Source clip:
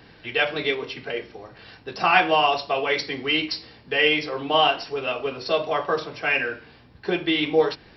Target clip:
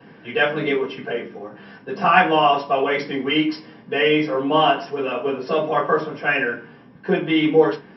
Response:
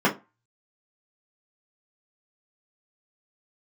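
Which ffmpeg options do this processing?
-filter_complex "[1:a]atrim=start_sample=2205[s0];[0:a][s0]afir=irnorm=-1:irlink=0,volume=0.2"

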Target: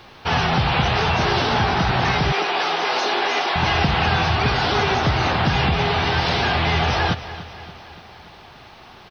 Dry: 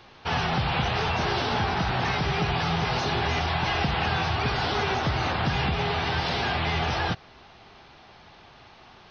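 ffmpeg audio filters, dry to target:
-filter_complex "[0:a]asplit=2[s0][s1];[s1]aecho=0:1:289|578|867|1156|1445:0.178|0.0996|0.0558|0.0312|0.0175[s2];[s0][s2]amix=inputs=2:normalize=0,acrusher=bits=11:mix=0:aa=0.000001,asettb=1/sr,asplit=3[s3][s4][s5];[s3]atrim=end=2.324[s6];[s4]atrim=start=2.32:end=3.56,asetpts=PTS-STARTPTS,afade=t=in:d=0.004:c=qsin,afade=t=out:st=1.236:d=0.004:c=qsin,highpass=f=310:w=0.5412,highpass=f=310:w=1.3066[s7];[s5]atrim=start=3.556[s8];[s6][s7]acrossfade=d=0.004:c1=hsin:c2=qsin[s9];[s9][s8]acrossfade=d=0.004:c1=qsin:c2=hsin,volume=2.11"

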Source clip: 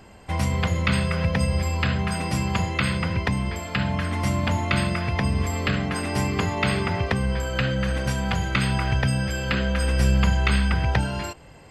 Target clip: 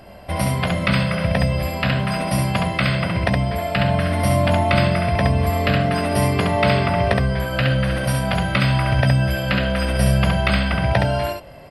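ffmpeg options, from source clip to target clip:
-af "superequalizer=8b=2.82:15b=0.282:16b=2.82,aecho=1:1:16|68:0.316|0.668,volume=1.33"

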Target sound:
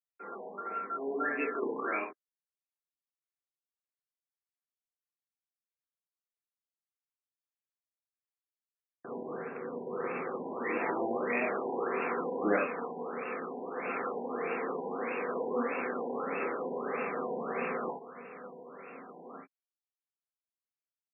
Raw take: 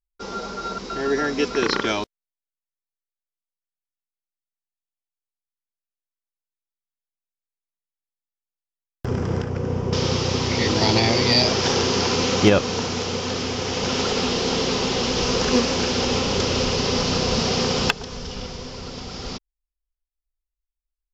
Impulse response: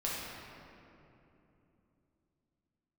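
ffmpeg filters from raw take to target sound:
-filter_complex "[0:a]highpass=f=300:w=0.5412,highpass=f=300:w=1.3066,equalizer=f=360:t=q:w=4:g=-7,equalizer=f=550:t=q:w=4:g=-8,equalizer=f=910:t=q:w=4:g=-8,lowpass=f=4800:w=0.5412,lowpass=f=4800:w=1.3066[s0];[1:a]atrim=start_sample=2205,afade=t=out:st=0.14:d=0.01,atrim=end_sample=6615,atrim=end_sample=3969[s1];[s0][s1]afir=irnorm=-1:irlink=0,afftfilt=real='re*lt(b*sr/1024,990*pow(2800/990,0.5+0.5*sin(2*PI*1.6*pts/sr)))':imag='im*lt(b*sr/1024,990*pow(2800/990,0.5+0.5*sin(2*PI*1.6*pts/sr)))':win_size=1024:overlap=0.75,volume=0.473"

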